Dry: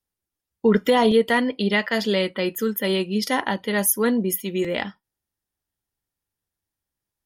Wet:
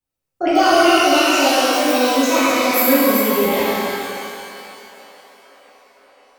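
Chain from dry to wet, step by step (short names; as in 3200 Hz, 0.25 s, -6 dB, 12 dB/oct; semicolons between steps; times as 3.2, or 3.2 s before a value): speed glide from 161% -> 66%; on a send: band-limited delay 0.517 s, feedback 73%, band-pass 1100 Hz, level -22 dB; on the sum: shimmer reverb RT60 2.5 s, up +12 st, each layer -8 dB, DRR -11.5 dB; gain -5.5 dB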